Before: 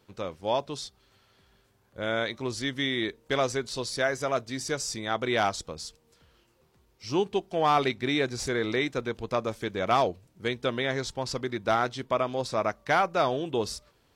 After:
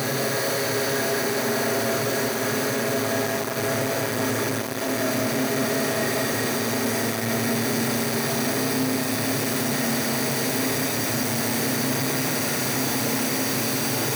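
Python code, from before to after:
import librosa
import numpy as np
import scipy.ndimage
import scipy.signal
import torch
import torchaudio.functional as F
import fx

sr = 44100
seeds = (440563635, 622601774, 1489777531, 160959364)

p1 = fx.lower_of_two(x, sr, delay_ms=0.48)
p2 = fx.over_compress(p1, sr, threshold_db=-38.0, ratio=-1.0)
p3 = fx.doubler(p2, sr, ms=36.0, db=-10.5)
p4 = fx.paulstretch(p3, sr, seeds[0], factor=24.0, window_s=1.0, from_s=4.15)
p5 = p4 + fx.echo_feedback(p4, sr, ms=181, feedback_pct=51, wet_db=-3, dry=0)
p6 = fx.rev_schroeder(p5, sr, rt60_s=0.63, comb_ms=27, drr_db=2.0)
p7 = fx.leveller(p6, sr, passes=5)
p8 = scipy.signal.sosfilt(scipy.signal.butter(2, 160.0, 'highpass', fs=sr, output='sos'), p7)
y = fx.peak_eq(p8, sr, hz=6700.0, db=-9.5, octaves=1.9)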